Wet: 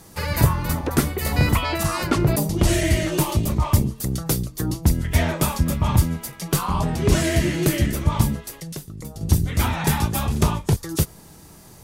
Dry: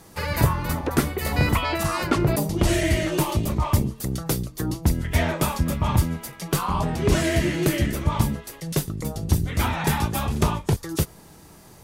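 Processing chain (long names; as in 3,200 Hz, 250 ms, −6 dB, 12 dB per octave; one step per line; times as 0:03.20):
0:08.57–0:09.21: downward compressor 4 to 1, threshold −35 dBFS, peak gain reduction 14.5 dB
bass and treble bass +3 dB, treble +4 dB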